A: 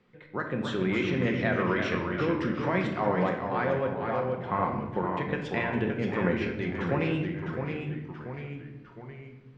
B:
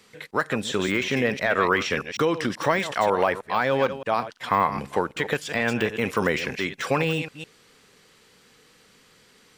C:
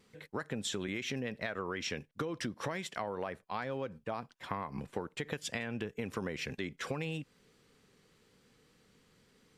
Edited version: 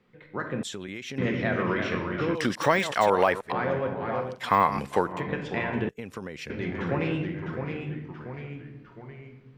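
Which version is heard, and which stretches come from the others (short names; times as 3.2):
A
0.63–1.18 from C
2.35–3.52 from B
4.3–5.12 from B, crossfade 0.24 s
5.89–6.5 from C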